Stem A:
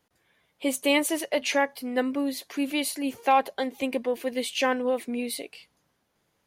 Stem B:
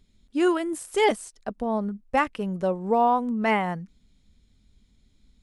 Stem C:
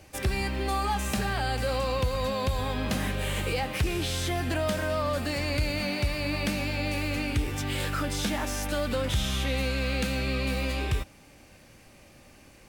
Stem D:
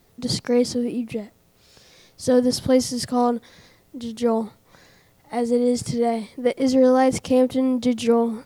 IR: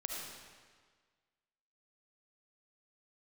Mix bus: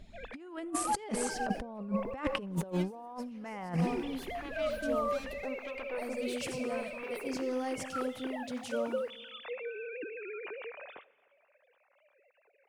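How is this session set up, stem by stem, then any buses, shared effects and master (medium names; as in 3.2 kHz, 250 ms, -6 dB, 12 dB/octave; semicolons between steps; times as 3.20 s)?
-11.0 dB, 1.85 s, send -5.5 dB, valve stage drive 31 dB, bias 0.55; lamp-driven phase shifter 0.84 Hz
+2.5 dB, 0.00 s, send -20.5 dB, peak limiter -18.5 dBFS, peak gain reduction 9.5 dB
-17.0 dB, 0.00 s, send -20 dB, formants replaced by sine waves
-17.0 dB, 0.65 s, send -6.5 dB, pre-emphasis filter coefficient 0.8; waveshaping leveller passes 1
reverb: on, RT60 1.6 s, pre-delay 30 ms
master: treble shelf 4.7 kHz -9 dB; compressor with a negative ratio -32 dBFS, ratio -0.5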